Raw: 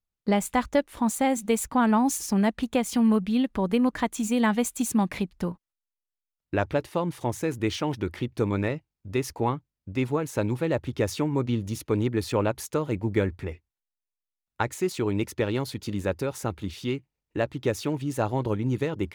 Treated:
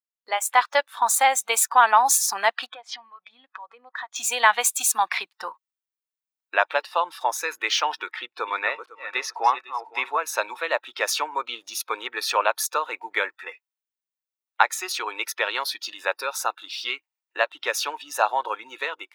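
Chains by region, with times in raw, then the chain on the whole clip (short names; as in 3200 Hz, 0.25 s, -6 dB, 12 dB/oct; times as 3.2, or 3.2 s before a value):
2.66–4.16 air absorption 140 m + compressor 8:1, threshold -36 dBFS + notch 2800 Hz, Q 14
8.11–10.2 regenerating reverse delay 0.252 s, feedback 53%, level -9.5 dB + high shelf 7000 Hz -11 dB
whole clip: HPF 770 Hz 24 dB/oct; AGC gain up to 7.5 dB; spectral noise reduction 14 dB; gain +4 dB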